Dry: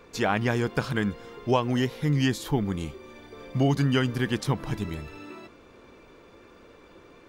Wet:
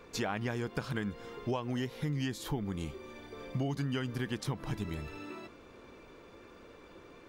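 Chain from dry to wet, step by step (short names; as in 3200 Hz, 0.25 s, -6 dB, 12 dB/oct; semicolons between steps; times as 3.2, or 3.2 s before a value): compressor 4:1, threshold -30 dBFS, peak gain reduction 11 dB; gain -2 dB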